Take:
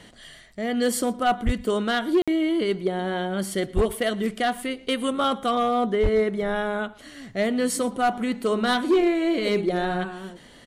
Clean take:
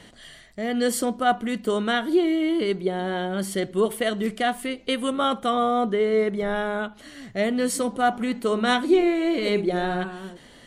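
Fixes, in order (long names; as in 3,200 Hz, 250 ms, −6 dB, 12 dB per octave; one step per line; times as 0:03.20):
clipped peaks rebuilt −14.5 dBFS
0:01.45–0:01.57: high-pass filter 140 Hz 24 dB per octave
0:03.75–0:03.87: high-pass filter 140 Hz 24 dB per octave
0:06.02–0:06.14: high-pass filter 140 Hz 24 dB per octave
repair the gap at 0:02.22, 56 ms
echo removal 115 ms −22.5 dB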